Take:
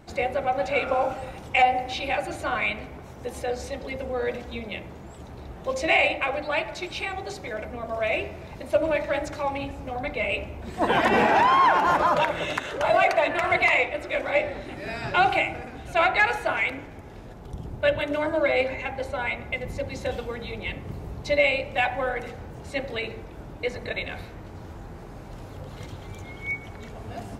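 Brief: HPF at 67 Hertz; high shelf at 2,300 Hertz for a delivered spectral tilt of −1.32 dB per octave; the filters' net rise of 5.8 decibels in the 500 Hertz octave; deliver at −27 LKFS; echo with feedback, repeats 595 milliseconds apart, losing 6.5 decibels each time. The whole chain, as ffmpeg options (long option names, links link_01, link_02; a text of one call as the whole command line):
ffmpeg -i in.wav -af "highpass=67,equalizer=frequency=500:width_type=o:gain=6.5,highshelf=frequency=2300:gain=8,aecho=1:1:595|1190|1785|2380|2975|3570:0.473|0.222|0.105|0.0491|0.0231|0.0109,volume=-7dB" out.wav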